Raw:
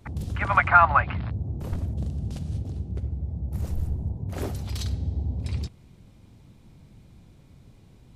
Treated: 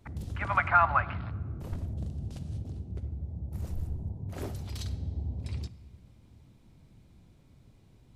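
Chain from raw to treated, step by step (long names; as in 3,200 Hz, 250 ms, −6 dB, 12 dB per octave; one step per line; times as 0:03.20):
convolution reverb RT60 1.5 s, pre-delay 3 ms, DRR 16 dB
level −6.5 dB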